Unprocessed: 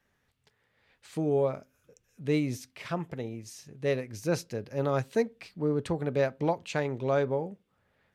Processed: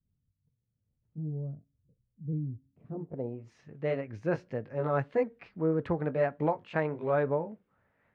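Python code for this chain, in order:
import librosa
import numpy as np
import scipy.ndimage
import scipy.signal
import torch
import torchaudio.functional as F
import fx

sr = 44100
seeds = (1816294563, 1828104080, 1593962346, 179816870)

y = fx.pitch_ramps(x, sr, semitones=1.5, every_ms=582)
y = fx.filter_sweep_lowpass(y, sr, from_hz=140.0, to_hz=1700.0, start_s=2.63, end_s=3.53, q=1.2)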